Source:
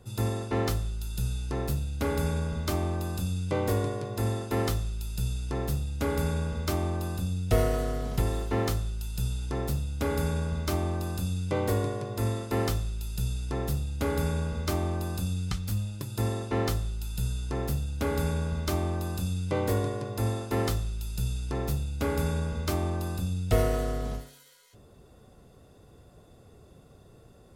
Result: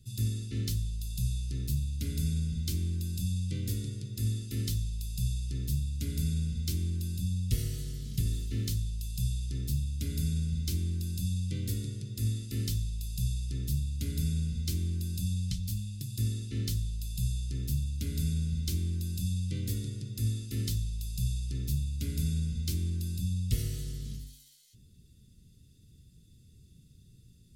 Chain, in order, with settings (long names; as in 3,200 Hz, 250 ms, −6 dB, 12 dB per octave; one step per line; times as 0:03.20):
Chebyshev band-stop filter 170–4,000 Hz, order 2
mains-hum notches 50/100/150/200/250 Hz